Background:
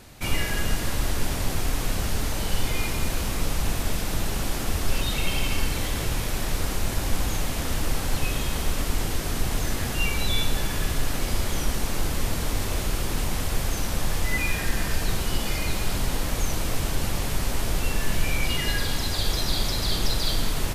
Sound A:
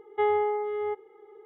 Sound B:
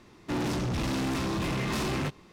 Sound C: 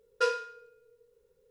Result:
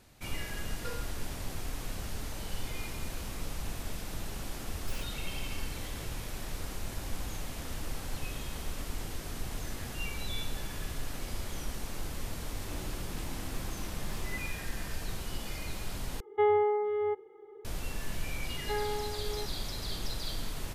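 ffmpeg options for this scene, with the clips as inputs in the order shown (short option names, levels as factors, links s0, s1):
-filter_complex "[3:a]asplit=2[s0][s1];[1:a]asplit=2[s2][s3];[0:a]volume=0.251[s4];[s0]alimiter=limit=0.0891:level=0:latency=1:release=71[s5];[s1]aeval=exprs='(mod(37.6*val(0)+1,2)-1)/37.6':c=same[s6];[s2]lowshelf=f=300:g=10[s7];[s4]asplit=2[s8][s9];[s8]atrim=end=16.204[s10];[s7]atrim=end=1.45,asetpts=PTS-STARTPTS,volume=0.668[s11];[s9]atrim=start=17.646[s12];[s5]atrim=end=1.5,asetpts=PTS-STARTPTS,volume=0.266,afade=t=in:d=0.004:c=hsin,afade=t=out:st=1.496:d=0.004:c=hsin,adelay=640[s13];[s6]atrim=end=1.5,asetpts=PTS-STARTPTS,volume=0.224,afade=t=in:d=0.004:c=hsin,afade=t=out:st=1.496:d=0.004:c=hsin,adelay=4670[s14];[2:a]atrim=end=2.32,asetpts=PTS-STARTPTS,volume=0.15,afade=t=in:d=0.004:c=hsin,afade=t=out:st=2.316:d=0.004:c=hsin,adelay=12390[s15];[s3]atrim=end=1.45,asetpts=PTS-STARTPTS,volume=0.316,afade=t=in:d=0.004:c=hsin,afade=t=out:st=1.446:d=0.004:c=hsin,adelay=18510[s16];[s10][s11]acrossfade=d=0.004:c1=hsin:c2=hsin[s17];[s17][s12]acrossfade=d=0.004:c1=hsin:c2=hsin[s18];[s18][s13][s14][s15][s16]amix=inputs=5:normalize=0"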